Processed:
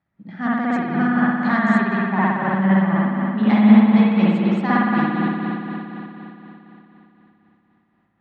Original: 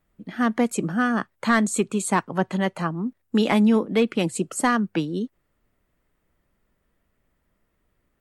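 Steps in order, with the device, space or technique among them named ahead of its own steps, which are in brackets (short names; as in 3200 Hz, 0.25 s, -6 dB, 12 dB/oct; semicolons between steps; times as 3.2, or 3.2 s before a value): combo amplifier with spring reverb and tremolo (spring tank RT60 3.6 s, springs 57 ms, chirp 40 ms, DRR -8.5 dB; tremolo 4 Hz, depth 40%; speaker cabinet 90–4600 Hz, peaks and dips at 110 Hz +9 dB, 190 Hz +6 dB, 450 Hz -10 dB, 820 Hz +6 dB, 1800 Hz +4 dB, 2900 Hz -5 dB); 1.99–3.5 LPF 3400 Hz 24 dB/oct; gain -5 dB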